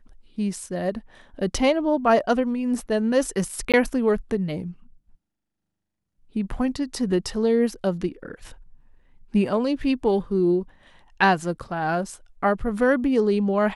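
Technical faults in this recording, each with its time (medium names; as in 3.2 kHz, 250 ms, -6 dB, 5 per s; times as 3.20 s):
3.72–3.74 s: dropout 17 ms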